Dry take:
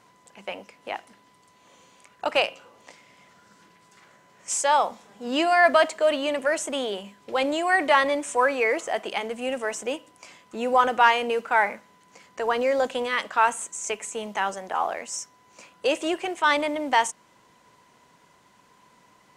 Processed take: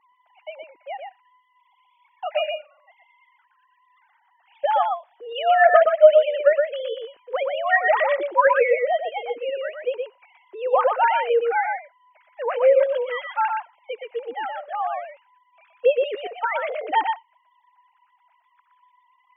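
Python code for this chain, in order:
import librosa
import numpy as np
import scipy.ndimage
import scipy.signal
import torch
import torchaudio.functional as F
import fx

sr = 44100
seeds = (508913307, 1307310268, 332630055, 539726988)

y = fx.sine_speech(x, sr)
y = fx.peak_eq(y, sr, hz=290.0, db=6.5, octaves=1.5)
y = y + 10.0 ** (-4.5 / 20.0) * np.pad(y, (int(120 * sr / 1000.0), 0))[:len(y)]
y = fx.band_squash(y, sr, depth_pct=70, at=(8.47, 9.0))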